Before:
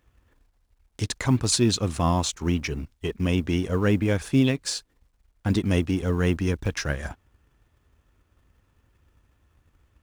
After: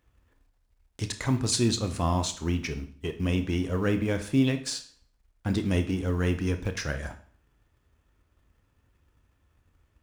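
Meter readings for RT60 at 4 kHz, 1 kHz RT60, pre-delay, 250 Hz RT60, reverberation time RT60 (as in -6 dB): 0.45 s, 0.50 s, 25 ms, 0.50 s, 0.50 s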